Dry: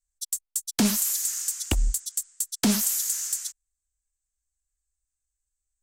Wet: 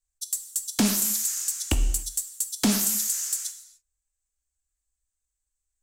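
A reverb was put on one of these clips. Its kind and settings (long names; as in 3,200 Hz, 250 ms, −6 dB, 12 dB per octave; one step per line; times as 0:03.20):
reverb whose tail is shaped and stops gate 320 ms falling, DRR 8 dB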